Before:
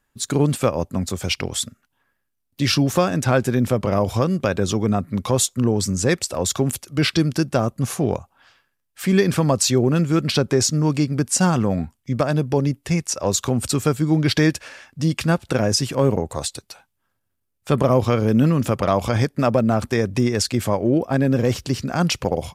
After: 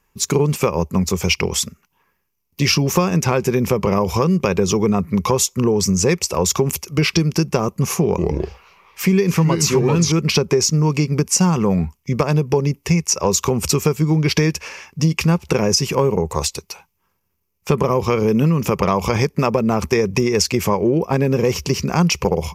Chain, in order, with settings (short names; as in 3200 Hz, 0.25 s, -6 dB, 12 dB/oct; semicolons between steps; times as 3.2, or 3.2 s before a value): 8.06–10.12 echoes that change speed 0.12 s, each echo -3 st, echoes 2; ripple EQ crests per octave 0.79, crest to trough 10 dB; compressor 6:1, threshold -18 dBFS, peak gain reduction 10.5 dB; gain +5.5 dB